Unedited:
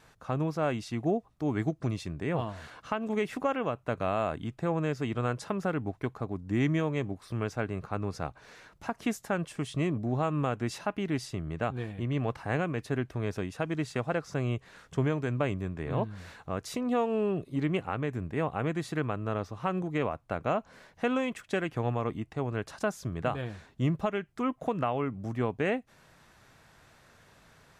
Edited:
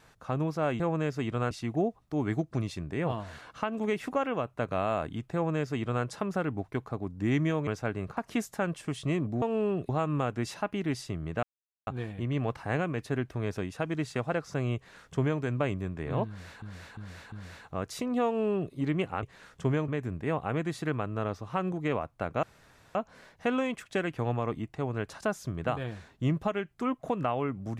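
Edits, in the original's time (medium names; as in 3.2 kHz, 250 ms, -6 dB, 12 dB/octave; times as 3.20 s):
4.63–5.34 s: copy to 0.80 s
6.96–7.41 s: delete
7.91–8.88 s: delete
11.67 s: insert silence 0.44 s
14.56–15.21 s: copy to 17.98 s
16.07–16.42 s: loop, 4 plays
17.01–17.48 s: copy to 10.13 s
20.53 s: insert room tone 0.52 s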